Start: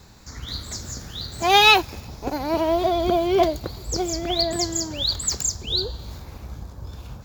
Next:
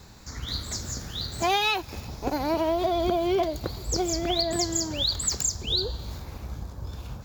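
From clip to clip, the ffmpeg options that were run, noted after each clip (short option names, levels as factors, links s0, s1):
-af "acompressor=threshold=0.0891:ratio=8"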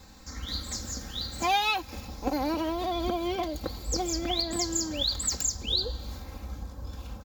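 -af "aecho=1:1:3.8:0.67,volume=0.668"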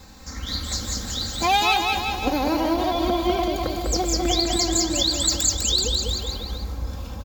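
-af "aecho=1:1:200|380|542|687.8|819:0.631|0.398|0.251|0.158|0.1,volume=1.88"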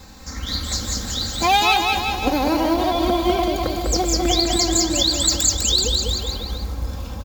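-af "acrusher=bits=7:mode=log:mix=0:aa=0.000001,volume=1.41"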